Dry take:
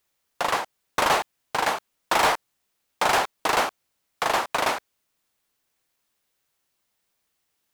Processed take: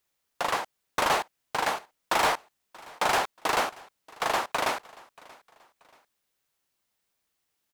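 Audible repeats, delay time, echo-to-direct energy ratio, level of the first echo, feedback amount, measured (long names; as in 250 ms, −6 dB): 2, 632 ms, −22.5 dB, −23.0 dB, 36%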